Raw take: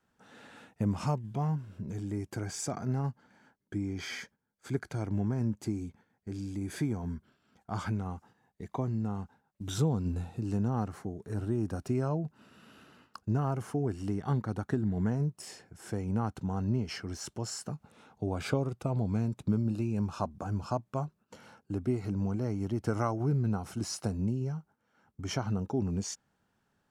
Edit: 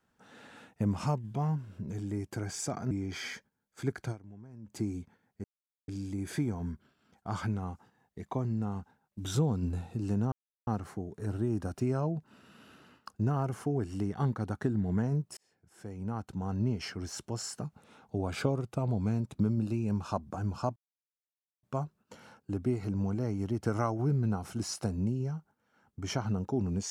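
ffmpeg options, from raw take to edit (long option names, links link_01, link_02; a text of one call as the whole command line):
ffmpeg -i in.wav -filter_complex "[0:a]asplit=8[link_01][link_02][link_03][link_04][link_05][link_06][link_07][link_08];[link_01]atrim=end=2.912[link_09];[link_02]atrim=start=3.778:end=5.24,asetpts=PTS-STARTPTS,afade=type=out:start_time=1.202:duration=0.26:curve=exp:silence=0.112202[link_10];[link_03]atrim=start=5.24:end=5.31,asetpts=PTS-STARTPTS,volume=-19dB[link_11];[link_04]atrim=start=5.31:end=6.31,asetpts=PTS-STARTPTS,afade=type=in:duration=0.26:curve=exp:silence=0.112202,afade=type=out:start_time=0.996:duration=0.004:curve=hsin,apad=pad_dur=0.44[link_12];[link_05]atrim=start=6.31:end=10.75,asetpts=PTS-STARTPTS,afade=type=in:duration=0.004:curve=hsin,afade=type=out:start_time=4.436:duration=0.004:curve=hsin,apad=pad_dur=0.35[link_13];[link_06]atrim=start=10.75:end=15.45,asetpts=PTS-STARTPTS,afade=type=in:duration=0.004:curve=hsin,afade=type=out:start_time=4.696:duration=0.004:curve=hsin[link_14];[link_07]atrim=start=15.45:end=20.84,asetpts=PTS-STARTPTS,afade=type=in:duration=1.32,afade=type=out:start_time=5.386:duration=0.004:curve=hsin,apad=pad_dur=0.87[link_15];[link_08]atrim=start=20.84,asetpts=PTS-STARTPTS,afade=type=in:duration=0.004:curve=hsin[link_16];[link_10][link_11][link_12][link_13][link_14][link_15][link_16]concat=n=7:v=0:a=1[link_17];[link_09][link_17]acrossfade=duration=0.004:curve1=hsin:curve2=hsin" out.wav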